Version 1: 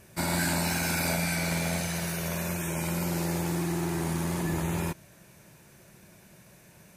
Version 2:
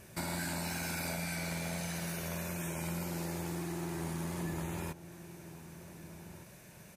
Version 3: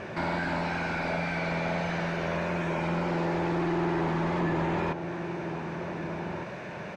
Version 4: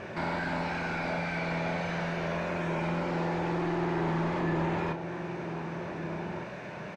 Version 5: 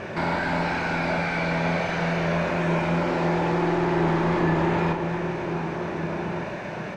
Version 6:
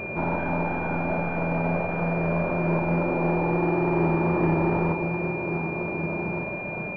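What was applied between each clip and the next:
compressor 2.5:1, threshold -39 dBFS, peak gain reduction 10 dB; outdoor echo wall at 260 m, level -13 dB
overdrive pedal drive 26 dB, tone 1100 Hz, clips at -24.5 dBFS; air absorption 180 m; gain +7 dB
doubler 31 ms -8 dB; gain -2.5 dB
echo with dull and thin repeats by turns 0.131 s, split 1400 Hz, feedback 84%, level -9 dB; gain +6.5 dB
tracing distortion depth 0.12 ms; pulse-width modulation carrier 2400 Hz

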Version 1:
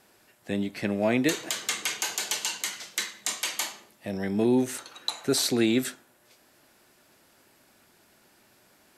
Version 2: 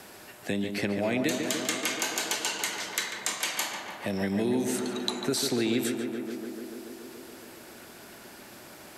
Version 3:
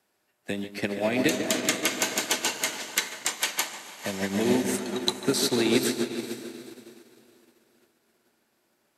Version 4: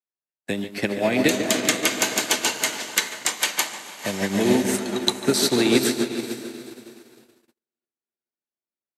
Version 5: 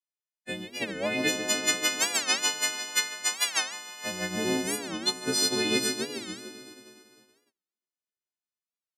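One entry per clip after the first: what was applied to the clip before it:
compressor 2:1, threshold -31 dBFS, peak gain reduction 7 dB; on a send: tape echo 0.143 s, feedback 82%, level -5 dB, low-pass 2300 Hz; on the sum: three-band squash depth 40%; gain +2.5 dB
low shelf 170 Hz -4.5 dB; on a send: diffused feedback echo 0.469 s, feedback 55%, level -6 dB; on the sum: upward expander 2.5:1, over -46 dBFS; gain +7 dB
gate -56 dBFS, range -36 dB; gain +4.5 dB
frequency quantiser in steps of 3 st; air absorption 63 m; record warp 45 rpm, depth 250 cents; gain -9 dB

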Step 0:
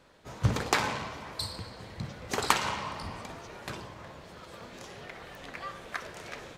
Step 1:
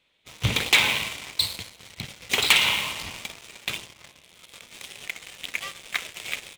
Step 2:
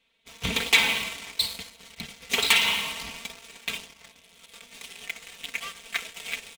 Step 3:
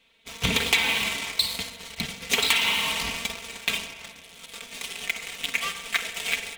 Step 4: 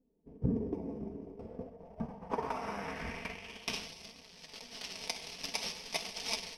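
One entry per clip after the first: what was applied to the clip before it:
band shelf 2800 Hz +14.5 dB 1.1 oct; sample leveller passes 3; high shelf 4800 Hz +10 dB; gain -10.5 dB
comb 4.4 ms, depth 85%; gain -4 dB
compressor 4:1, threshold -28 dBFS, peak gain reduction 12 dB; spring tank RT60 1.5 s, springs 43 ms, chirp 70 ms, DRR 10 dB; gain +7.5 dB
FFT order left unsorted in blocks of 32 samples; flange 0.48 Hz, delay 3.8 ms, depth 9.1 ms, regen +67%; low-pass sweep 340 Hz -> 4000 Hz, 1.17–3.91

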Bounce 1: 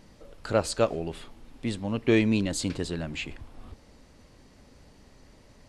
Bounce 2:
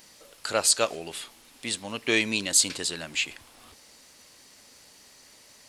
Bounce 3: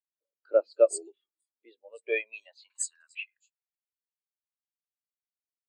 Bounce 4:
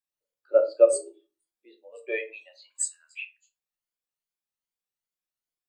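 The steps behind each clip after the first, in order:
tilt +4.5 dB/oct; gain +1 dB
three bands offset in time mids, lows, highs 0.11/0.25 s, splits 170/4400 Hz; high-pass sweep 320 Hz -> 2900 Hz, 1.39–4.2; spectral expander 2.5:1
moving spectral ripple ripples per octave 1.8, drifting +2.5 Hz, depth 7 dB; shoebox room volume 140 m³, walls furnished, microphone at 0.94 m

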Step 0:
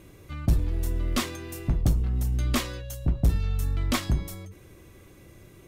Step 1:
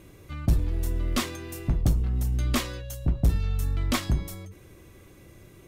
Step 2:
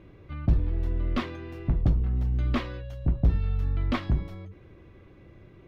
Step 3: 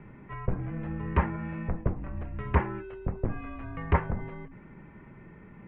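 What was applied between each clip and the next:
nothing audible
air absorption 330 m
mistuned SSB -170 Hz 200–2600 Hz; treble ducked by the level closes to 1700 Hz, closed at -31 dBFS; gain +6.5 dB

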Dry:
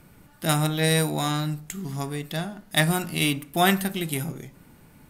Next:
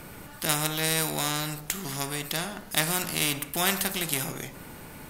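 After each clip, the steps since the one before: spectral compressor 2:1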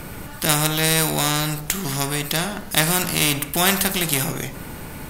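low shelf 120 Hz +6 dB; in parallel at -5 dB: soft clip -18 dBFS, distortion -14 dB; on the sum: gain +4 dB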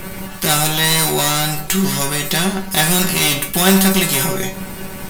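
sample leveller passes 3; resonator 190 Hz, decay 0.2 s, harmonics all, mix 90%; gain +5 dB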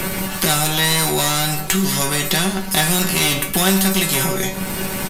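downsampling 32000 Hz; three-band squash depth 70%; gain -2 dB

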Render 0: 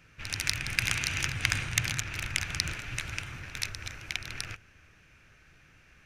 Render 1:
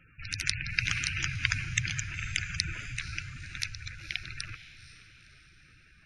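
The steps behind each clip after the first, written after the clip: spectral gate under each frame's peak -15 dB strong; diffused feedback echo 0.495 s, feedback 49%, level -14 dB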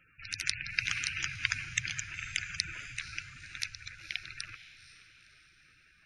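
low shelf 330 Hz -10.5 dB; gain -2 dB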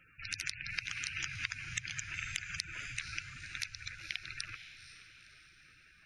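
compressor 10:1, threshold -35 dBFS, peak gain reduction 12.5 dB; gain +1.5 dB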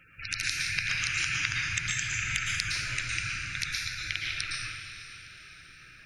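plate-style reverb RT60 1.2 s, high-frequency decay 0.8×, pre-delay 0.1 s, DRR -3 dB; gain +5.5 dB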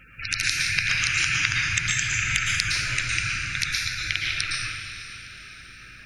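hum 50 Hz, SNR 30 dB; gain +6.5 dB

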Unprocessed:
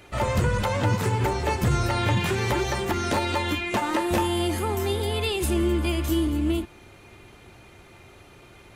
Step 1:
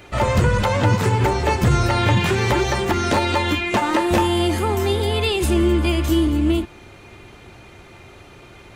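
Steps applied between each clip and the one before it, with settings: bell 12000 Hz -6.5 dB 0.78 oct; gain +6 dB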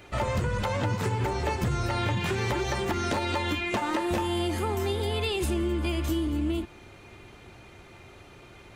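compressor, threshold -18 dBFS, peak gain reduction 6 dB; gain -6 dB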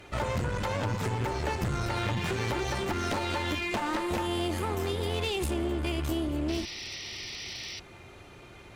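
painted sound noise, 6.48–7.8, 1800–6000 Hz -40 dBFS; one-sided clip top -33.5 dBFS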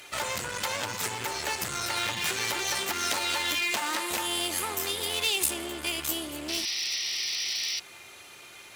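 tilt +4.5 dB/oct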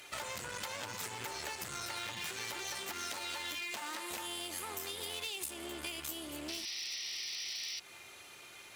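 compressor 4:1, threshold -33 dBFS, peak gain reduction 10.5 dB; gain -5 dB

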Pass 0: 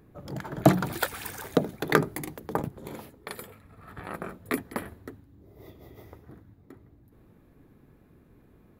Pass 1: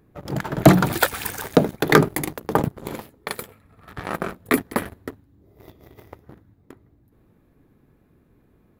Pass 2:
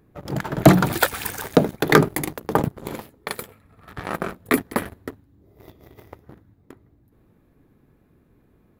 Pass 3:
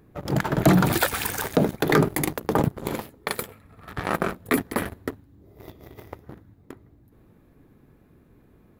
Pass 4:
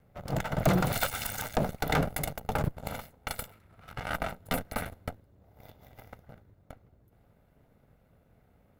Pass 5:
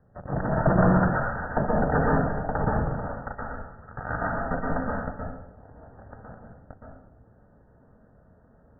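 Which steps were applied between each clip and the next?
sample leveller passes 2; gain +2.5 dB
nothing audible
limiter -12.5 dBFS, peak gain reduction 11 dB; gain +3 dB
minimum comb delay 1.4 ms; gain -6 dB
brick-wall FIR low-pass 1900 Hz; reverb RT60 0.95 s, pre-delay 0.112 s, DRR -3.5 dB; gain +2 dB

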